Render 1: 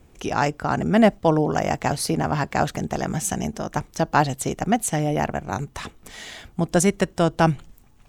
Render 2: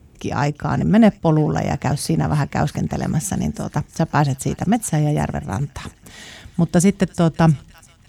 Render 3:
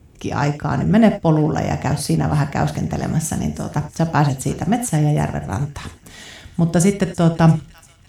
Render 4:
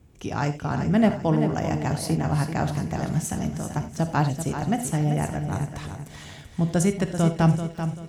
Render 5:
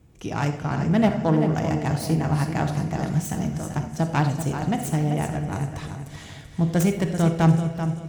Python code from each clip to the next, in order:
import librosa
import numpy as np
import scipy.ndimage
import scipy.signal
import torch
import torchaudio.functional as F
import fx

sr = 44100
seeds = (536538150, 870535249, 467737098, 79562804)

y1 = scipy.signal.sosfilt(scipy.signal.butter(2, 63.0, 'highpass', fs=sr, output='sos'), x)
y1 = fx.bass_treble(y1, sr, bass_db=10, treble_db=1)
y1 = fx.echo_wet_highpass(y1, sr, ms=342, feedback_pct=65, hz=2000.0, wet_db=-17.5)
y1 = y1 * 10.0 ** (-1.0 / 20.0)
y2 = fx.rev_gated(y1, sr, seeds[0], gate_ms=110, shape='flat', drr_db=8.5)
y3 = fx.echo_feedback(y2, sr, ms=387, feedback_pct=33, wet_db=-9)
y3 = y3 * 10.0 ** (-6.5 / 20.0)
y4 = fx.self_delay(y3, sr, depth_ms=0.15)
y4 = fx.room_shoebox(y4, sr, seeds[1], volume_m3=1400.0, walls='mixed', distance_m=0.61)